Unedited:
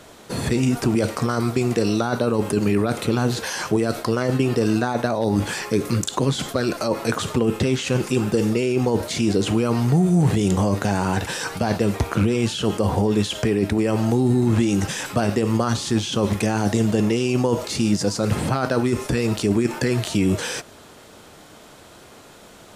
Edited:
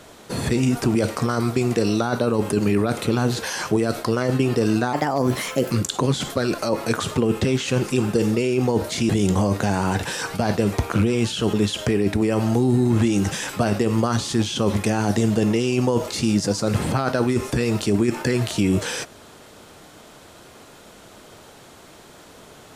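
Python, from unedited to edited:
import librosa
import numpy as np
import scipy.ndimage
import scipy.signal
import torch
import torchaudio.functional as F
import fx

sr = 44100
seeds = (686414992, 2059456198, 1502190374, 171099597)

y = fx.edit(x, sr, fx.speed_span(start_s=4.93, length_s=0.96, speed=1.24),
    fx.cut(start_s=9.28, length_s=1.03),
    fx.cut(start_s=12.75, length_s=0.35), tone=tone)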